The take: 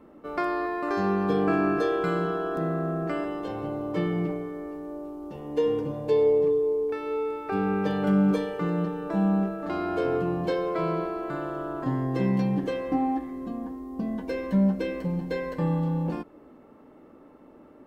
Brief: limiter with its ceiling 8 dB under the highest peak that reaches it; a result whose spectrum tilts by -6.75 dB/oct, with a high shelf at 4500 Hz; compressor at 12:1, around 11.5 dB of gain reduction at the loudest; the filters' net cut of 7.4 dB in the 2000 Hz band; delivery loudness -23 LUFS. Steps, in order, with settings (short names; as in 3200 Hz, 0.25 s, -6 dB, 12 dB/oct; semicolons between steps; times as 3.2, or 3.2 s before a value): bell 2000 Hz -9 dB; high shelf 4500 Hz -7.5 dB; compressor 12:1, threshold -30 dBFS; gain +13.5 dB; limiter -15 dBFS